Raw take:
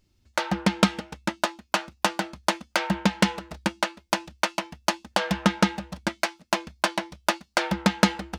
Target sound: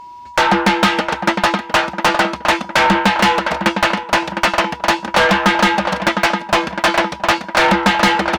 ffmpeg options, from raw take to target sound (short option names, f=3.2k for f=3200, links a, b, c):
-filter_complex "[0:a]asplit=2[a][b];[b]adelay=709,lowpass=f=2.7k:p=1,volume=-16dB,asplit=2[c][d];[d]adelay=709,lowpass=f=2.7k:p=1,volume=0.49,asplit=2[e][f];[f]adelay=709,lowpass=f=2.7k:p=1,volume=0.49,asplit=2[g][h];[h]adelay=709,lowpass=f=2.7k:p=1,volume=0.49[i];[a][c][e][g][i]amix=inputs=5:normalize=0,asplit=2[j][k];[k]highpass=f=720:p=1,volume=32dB,asoftclip=type=tanh:threshold=-1.5dB[l];[j][l]amix=inputs=2:normalize=0,lowpass=f=2.2k:p=1,volume=-6dB,aeval=exprs='val(0)+0.0224*sin(2*PI*970*n/s)':c=same"